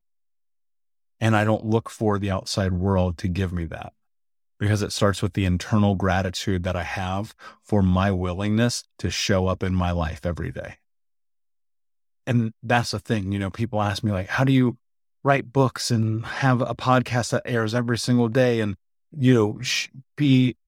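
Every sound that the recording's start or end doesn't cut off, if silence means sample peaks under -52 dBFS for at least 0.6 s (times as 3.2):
1.2–3.9
4.6–10.75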